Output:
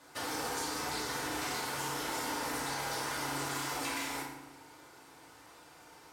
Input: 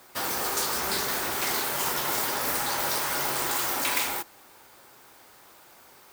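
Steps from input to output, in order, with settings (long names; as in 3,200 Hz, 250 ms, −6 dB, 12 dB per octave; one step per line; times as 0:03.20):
low-pass filter 9,800 Hz 12 dB per octave
downward compressor, threshold −32 dBFS, peak gain reduction 8.5 dB
feedback delay network reverb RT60 0.99 s, low-frequency decay 1.45×, high-frequency decay 0.65×, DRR −5 dB
level −7.5 dB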